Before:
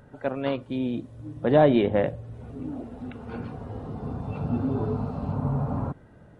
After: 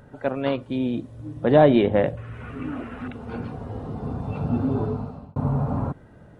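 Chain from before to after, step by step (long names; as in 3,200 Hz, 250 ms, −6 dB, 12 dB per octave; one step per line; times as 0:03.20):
0:02.17–0:03.08: flat-topped bell 1,800 Hz +15.5 dB
0:04.78–0:05.36: fade out
level +3 dB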